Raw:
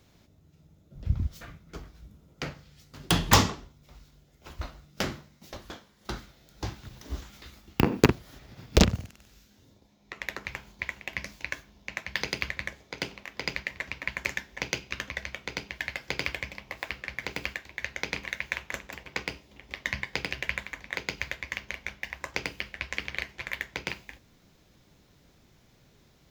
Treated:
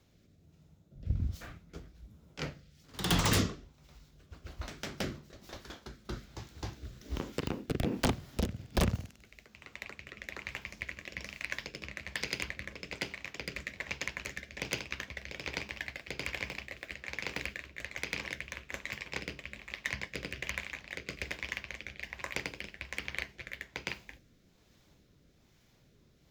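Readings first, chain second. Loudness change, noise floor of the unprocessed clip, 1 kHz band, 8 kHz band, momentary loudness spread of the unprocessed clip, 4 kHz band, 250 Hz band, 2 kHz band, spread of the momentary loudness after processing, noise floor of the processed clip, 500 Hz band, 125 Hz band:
-6.0 dB, -62 dBFS, -8.0 dB, -5.5 dB, 20 LU, -5.5 dB, -6.0 dB, -5.5 dB, 16 LU, -65 dBFS, -6.5 dB, -5.0 dB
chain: echoes that change speed 0.111 s, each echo +1 st, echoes 2, each echo -6 dB; wavefolder -15.5 dBFS; rotary speaker horn 1.2 Hz; gain -3 dB

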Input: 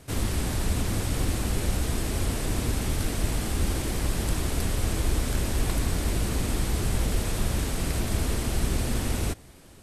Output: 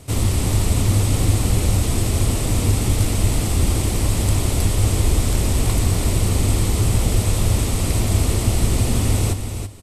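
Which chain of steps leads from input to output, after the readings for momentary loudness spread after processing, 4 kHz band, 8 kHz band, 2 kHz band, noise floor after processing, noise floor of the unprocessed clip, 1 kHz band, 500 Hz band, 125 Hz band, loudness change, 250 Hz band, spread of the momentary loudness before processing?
2 LU, +6.5 dB, +9.0 dB, +4.0 dB, -25 dBFS, -49 dBFS, +6.0 dB, +6.5 dB, +11.0 dB, +9.0 dB, +7.0 dB, 1 LU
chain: thirty-one-band EQ 100 Hz +10 dB, 1600 Hz -9 dB, 8000 Hz +4 dB; echo 0.331 s -8 dB; gain +6 dB

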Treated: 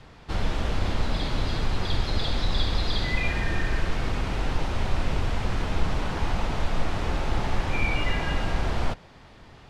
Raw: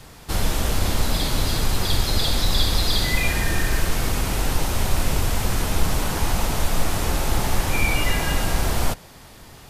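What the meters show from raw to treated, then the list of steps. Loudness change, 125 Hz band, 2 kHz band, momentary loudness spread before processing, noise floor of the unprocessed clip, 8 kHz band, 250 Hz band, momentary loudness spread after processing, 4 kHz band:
-5.5 dB, -4.0 dB, -4.5 dB, 4 LU, -45 dBFS, -18.0 dB, -4.0 dB, 3 LU, -8.0 dB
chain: LPF 3500 Hz 12 dB/oct; gain -4 dB

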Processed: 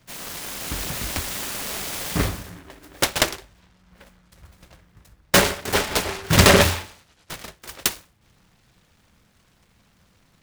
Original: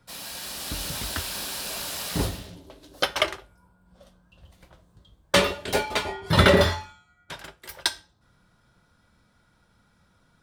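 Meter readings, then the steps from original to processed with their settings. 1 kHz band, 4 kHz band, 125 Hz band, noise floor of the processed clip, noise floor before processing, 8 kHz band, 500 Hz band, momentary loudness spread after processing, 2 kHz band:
+3.0 dB, +3.0 dB, +3.5 dB, -61 dBFS, -64 dBFS, +8.0 dB, +1.5 dB, 22 LU, +4.0 dB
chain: noise-modulated delay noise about 1200 Hz, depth 0.27 ms; gain +3.5 dB

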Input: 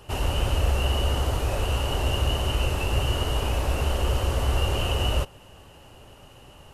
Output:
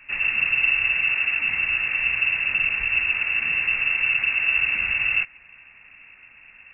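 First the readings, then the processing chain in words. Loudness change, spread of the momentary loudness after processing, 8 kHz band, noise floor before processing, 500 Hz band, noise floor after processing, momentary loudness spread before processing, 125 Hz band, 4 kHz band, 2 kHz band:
+6.0 dB, 2 LU, under -40 dB, -50 dBFS, under -15 dB, -50 dBFS, 2 LU, under -20 dB, n/a, +17.5 dB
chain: air absorption 170 m; inverted band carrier 2700 Hz

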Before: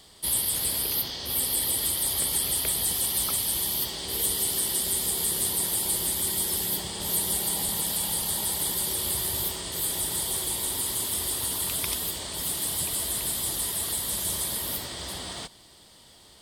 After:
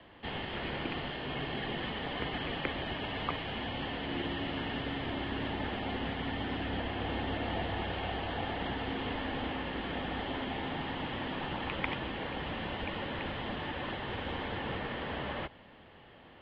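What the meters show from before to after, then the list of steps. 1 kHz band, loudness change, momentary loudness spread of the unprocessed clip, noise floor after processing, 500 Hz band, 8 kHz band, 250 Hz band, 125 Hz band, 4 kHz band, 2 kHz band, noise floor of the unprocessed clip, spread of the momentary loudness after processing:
+3.0 dB, -11.0 dB, 5 LU, -55 dBFS, +1.5 dB, under -40 dB, +4.0 dB, +1.0 dB, -9.5 dB, +3.5 dB, -53 dBFS, 2 LU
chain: mistuned SSB -110 Hz 160–2700 Hz; gain +4 dB

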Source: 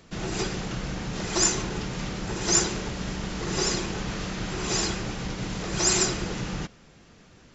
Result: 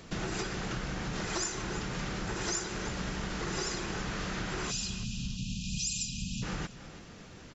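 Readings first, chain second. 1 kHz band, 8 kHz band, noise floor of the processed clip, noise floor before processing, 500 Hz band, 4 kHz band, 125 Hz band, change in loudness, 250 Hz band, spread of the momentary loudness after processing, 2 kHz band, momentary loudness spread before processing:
-5.5 dB, n/a, -50 dBFS, -54 dBFS, -8.0 dB, -7.5 dB, -5.5 dB, -8.0 dB, -6.5 dB, 5 LU, -4.5 dB, 10 LU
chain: spectral delete 4.71–6.43, 270–2400 Hz; dynamic EQ 1500 Hz, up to +5 dB, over -45 dBFS, Q 1.4; compressor 6:1, threshold -36 dBFS, peak gain reduction 18 dB; feedback echo 0.33 s, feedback 23%, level -15 dB; gain +3.5 dB

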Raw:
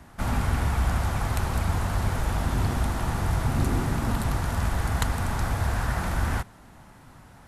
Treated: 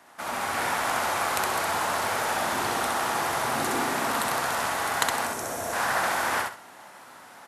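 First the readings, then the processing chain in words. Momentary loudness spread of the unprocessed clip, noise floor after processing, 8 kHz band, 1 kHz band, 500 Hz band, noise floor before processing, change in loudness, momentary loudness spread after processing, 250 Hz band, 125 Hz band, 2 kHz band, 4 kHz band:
2 LU, -48 dBFS, +7.5 dB, +6.5 dB, +5.0 dB, -50 dBFS, +0.5 dB, 4 LU, -5.5 dB, -19.5 dB, +7.0 dB, +7.5 dB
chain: spectral gain 5.26–5.73, 730–5300 Hz -9 dB; HPF 510 Hz 12 dB/oct; on a send: feedback echo 65 ms, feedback 27%, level -3 dB; on the sum: AGC gain up to 6 dB

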